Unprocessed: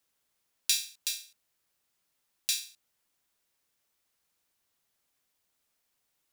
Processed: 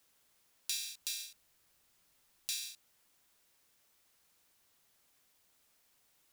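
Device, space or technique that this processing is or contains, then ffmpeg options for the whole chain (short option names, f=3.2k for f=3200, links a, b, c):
de-esser from a sidechain: -filter_complex "[0:a]asplit=2[a][b];[b]highpass=5.7k,apad=whole_len=278895[c];[a][c]sidechaincompress=threshold=-44dB:ratio=3:attack=1.9:release=98,asettb=1/sr,asplit=3[d][e][f];[d]atrim=end=0.944[g];[e]atrim=start=0.94:end=2.62,asetpts=PTS-STARTPTS,afade=t=in:d=0.004:c=qsin,afade=t=out:st=1.676:d=0.004:c=qsin,lowshelf=f=99:g=8[h];[f]atrim=start=2.616[i];[g][h]acrossfade=d=0.004:c1=hsin:c2=qsin[j];[j][i]acrossfade=d=0.004:c1=qsin:c2=hsin,volume=6.5dB"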